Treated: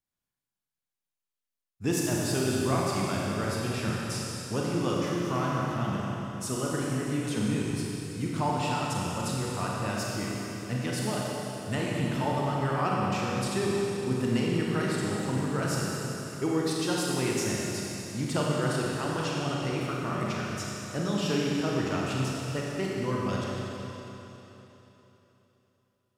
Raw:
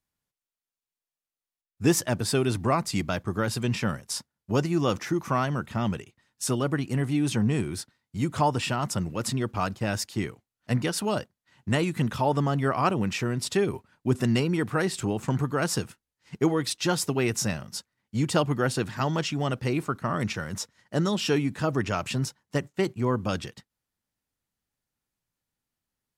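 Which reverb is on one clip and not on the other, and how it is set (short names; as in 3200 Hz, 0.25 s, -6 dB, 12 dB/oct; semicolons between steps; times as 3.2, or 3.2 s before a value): Schroeder reverb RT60 3.5 s, combs from 31 ms, DRR -4 dB; gain -7.5 dB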